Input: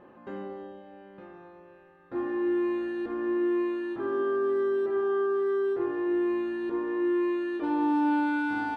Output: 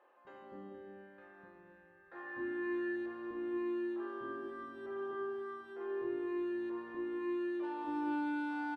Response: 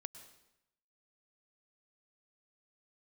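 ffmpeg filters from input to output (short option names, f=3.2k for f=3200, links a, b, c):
-filter_complex "[0:a]asettb=1/sr,asplit=3[a][b][c];[a]atrim=end=0.744[d];[b]atrim=start=0.74:end=2.96,asetpts=PTS-STARTPTS,afade=t=in:d=0.004:c=qsin,afade=t=out:st=2.216:d=0.004:c=qsin,equalizer=f=1.7k:t=o:w=0.39:g=10.5[e];[c]atrim=start=2.956[f];[d][e]acrossfade=d=0.004:c1=hsin:c2=qsin[g];[g][f]acrossfade=d=0.004:c1=qsin:c2=hsin,acrossover=split=460[h][i];[h]adelay=250[j];[j][i]amix=inputs=2:normalize=0[k];[1:a]atrim=start_sample=2205,afade=t=out:st=0.22:d=0.01,atrim=end_sample=10143,asetrate=25137,aresample=44100[l];[k][l]afir=irnorm=-1:irlink=0,volume=-8dB"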